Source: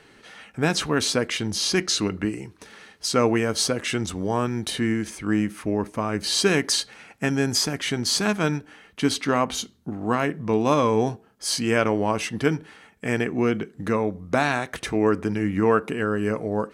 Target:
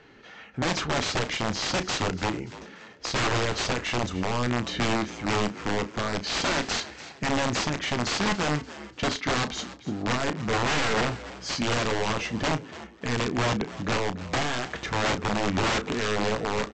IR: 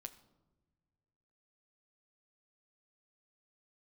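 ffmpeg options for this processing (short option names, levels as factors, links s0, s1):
-filter_complex "[0:a]aresample=16000,aeval=exprs='(mod(8.41*val(0)+1,2)-1)/8.41':c=same,aresample=44100,lowpass=f=3000:p=1,asplit=2[s0][s1];[s1]adelay=33,volume=0.251[s2];[s0][s2]amix=inputs=2:normalize=0,asplit=4[s3][s4][s5][s6];[s4]adelay=290,afreqshift=60,volume=0.158[s7];[s5]adelay=580,afreqshift=120,volume=0.0589[s8];[s6]adelay=870,afreqshift=180,volume=0.0216[s9];[s3][s7][s8][s9]amix=inputs=4:normalize=0"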